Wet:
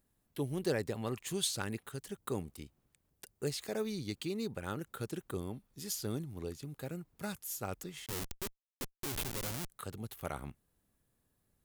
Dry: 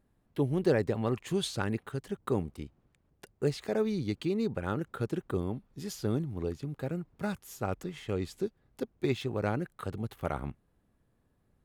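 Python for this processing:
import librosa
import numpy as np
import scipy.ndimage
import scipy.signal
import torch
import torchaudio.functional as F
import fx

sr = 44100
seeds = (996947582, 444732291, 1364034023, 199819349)

y = fx.schmitt(x, sr, flips_db=-36.5, at=(8.06, 9.7))
y = librosa.effects.preemphasis(y, coef=0.8, zi=[0.0])
y = y * 10.0 ** (6.5 / 20.0)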